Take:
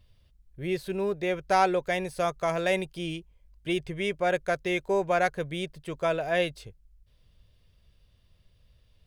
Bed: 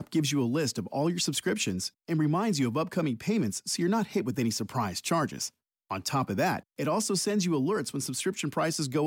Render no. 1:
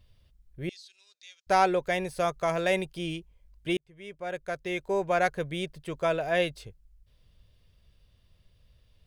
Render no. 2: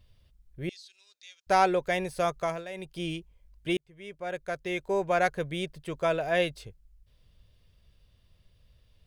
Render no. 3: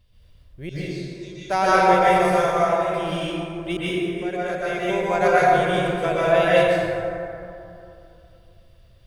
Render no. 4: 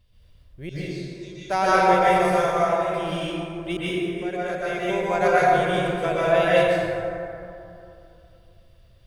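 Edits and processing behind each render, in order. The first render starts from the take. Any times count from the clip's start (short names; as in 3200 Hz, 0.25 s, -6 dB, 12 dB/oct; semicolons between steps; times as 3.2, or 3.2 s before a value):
0.69–1.47 Butterworth band-pass 5300 Hz, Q 1.6; 3.77–5.27 fade in
2.39–3 dip -14.5 dB, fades 0.26 s
plate-style reverb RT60 2.8 s, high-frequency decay 0.4×, pre-delay 0.11 s, DRR -9 dB
gain -1.5 dB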